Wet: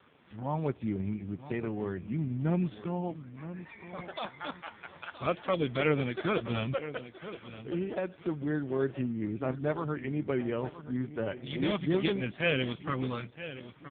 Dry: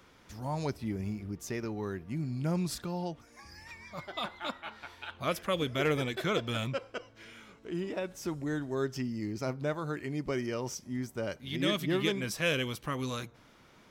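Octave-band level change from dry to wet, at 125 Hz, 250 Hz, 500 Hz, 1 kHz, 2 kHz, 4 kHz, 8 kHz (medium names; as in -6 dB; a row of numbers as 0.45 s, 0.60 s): +1.5 dB, +2.0 dB, +1.5 dB, +0.5 dB, 0.0 dB, -4.0 dB, under -35 dB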